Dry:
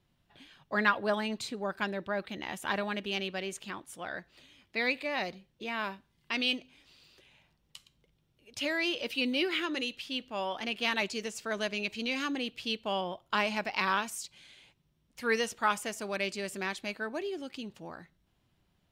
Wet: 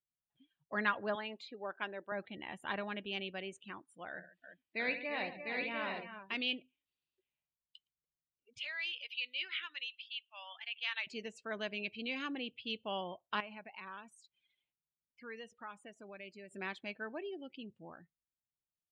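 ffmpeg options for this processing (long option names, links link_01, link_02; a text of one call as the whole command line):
ffmpeg -i in.wav -filter_complex "[0:a]asettb=1/sr,asplit=3[link_01][link_02][link_03];[link_01]atrim=end=1.154[link_04];[link_02]atrim=start=1.15:end=2.12,asetpts=PTS-STARTPTS,afade=type=in:duration=0.004:curve=qsin,afade=type=out:start_time=0.966:duration=0.004:curve=qsin,highpass=330,lowpass=6000[link_05];[link_03]atrim=start=2.116[link_06];[link_04][link_05]acrossfade=duration=0.004:curve1=hsin:curve2=qsin[link_07];[link_07][link_06]acrossfade=duration=0.004:curve1=qsin:curve2=hsin,asettb=1/sr,asplit=3[link_08][link_09][link_10];[link_08]atrim=end=4.094[link_11];[link_09]atrim=start=4.09:end=6.35,asetpts=PTS-STARTPTS,afade=type=in:duration=0.004:curve=qsin,afade=type=out:start_time=2.256:duration=0.004:curve=qsin,aecho=1:1:65|144|324|343|701|762:0.316|0.224|0.119|0.376|0.668|0.447,atrim=end_sample=99666[link_12];[link_10]atrim=start=6.346[link_13];[link_11][link_12]acrossfade=duration=0.004:curve1=hsin:curve2=qsin[link_14];[link_14][link_13]acrossfade=duration=0.004:curve1=qsin:curve2=hsin,asettb=1/sr,asplit=3[link_15][link_16][link_17];[link_15]atrim=end=8.584[link_18];[link_16]atrim=start=8.58:end=11.07,asetpts=PTS-STARTPTS,afade=type=in:duration=0.004:curve=qsin,afade=type=out:start_time=2.486:duration=0.004:curve=qsin,highpass=1500[link_19];[link_17]atrim=start=11.066[link_20];[link_18][link_19]acrossfade=duration=0.004:curve1=hsin:curve2=qsin[link_21];[link_21][link_20]acrossfade=duration=0.004:curve1=qsin:curve2=hsin,asettb=1/sr,asplit=3[link_22][link_23][link_24];[link_22]atrim=end=13.404[link_25];[link_23]atrim=start=13.4:end=16.51,asetpts=PTS-STARTPTS,afade=type=in:duration=0.004:curve=qsin,afade=type=out:start_time=3.106:duration=0.004:curve=qsin,acompressor=threshold=-46dB:ratio=2:attack=3.2:release=140:knee=1:detection=peak[link_26];[link_24]atrim=start=16.506[link_27];[link_25][link_26]acrossfade=duration=0.004:curve1=hsin:curve2=qsin[link_28];[link_28][link_27]acrossfade=duration=0.004:curve1=qsin:curve2=hsin,afftdn=noise_reduction=27:noise_floor=-45,highshelf=frequency=4100:width_type=q:width=1.5:gain=-6,volume=-7dB" out.wav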